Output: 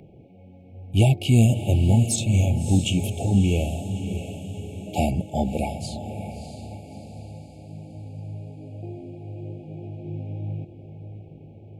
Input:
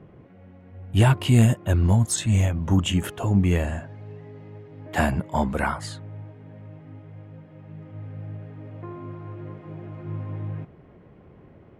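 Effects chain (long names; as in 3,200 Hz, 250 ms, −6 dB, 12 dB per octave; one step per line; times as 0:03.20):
steady tone 1,800 Hz −35 dBFS
brick-wall band-stop 870–2,200 Hz
feedback delay with all-pass diffusion 630 ms, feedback 49%, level −9.5 dB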